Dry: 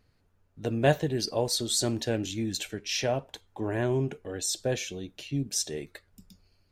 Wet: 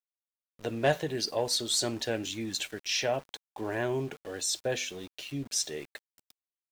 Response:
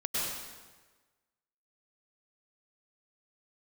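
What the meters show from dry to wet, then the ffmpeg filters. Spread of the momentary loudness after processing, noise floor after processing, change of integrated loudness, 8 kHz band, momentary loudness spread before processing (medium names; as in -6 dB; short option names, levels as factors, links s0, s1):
11 LU, under -85 dBFS, -2.0 dB, -1.0 dB, 11 LU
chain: -filter_complex "[0:a]bandreject=f=84.19:t=h:w=4,bandreject=f=168.38:t=h:w=4,bandreject=f=252.57:t=h:w=4,asplit=2[s0][s1];[s1]highpass=f=720:p=1,volume=3.16,asoftclip=type=tanh:threshold=0.316[s2];[s0][s2]amix=inputs=2:normalize=0,lowpass=f=6500:p=1,volume=0.501,aeval=exprs='val(0)*gte(abs(val(0)),0.00668)':c=same,volume=0.668"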